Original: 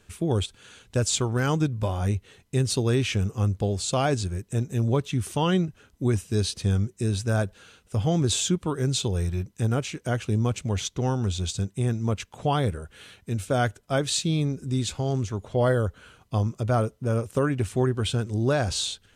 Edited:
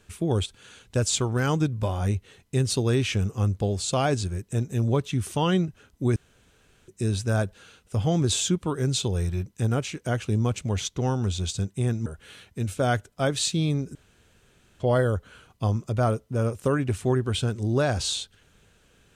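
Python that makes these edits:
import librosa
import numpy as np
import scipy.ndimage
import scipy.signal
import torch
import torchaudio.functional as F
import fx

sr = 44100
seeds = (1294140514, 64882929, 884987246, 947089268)

y = fx.edit(x, sr, fx.room_tone_fill(start_s=6.16, length_s=0.72),
    fx.cut(start_s=12.06, length_s=0.71),
    fx.room_tone_fill(start_s=14.66, length_s=0.85), tone=tone)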